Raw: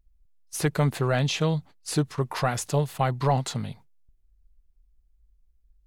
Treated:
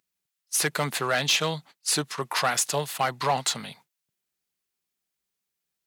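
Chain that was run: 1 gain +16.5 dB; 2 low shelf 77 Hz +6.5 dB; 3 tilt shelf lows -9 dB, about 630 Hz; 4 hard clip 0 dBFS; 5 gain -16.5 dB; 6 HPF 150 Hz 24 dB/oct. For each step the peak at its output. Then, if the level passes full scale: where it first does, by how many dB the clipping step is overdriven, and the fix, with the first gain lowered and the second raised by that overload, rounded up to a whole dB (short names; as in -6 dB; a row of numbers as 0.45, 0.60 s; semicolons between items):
+3.5, +4.0, +8.5, 0.0, -16.5, -12.0 dBFS; step 1, 8.5 dB; step 1 +7.5 dB, step 5 -7.5 dB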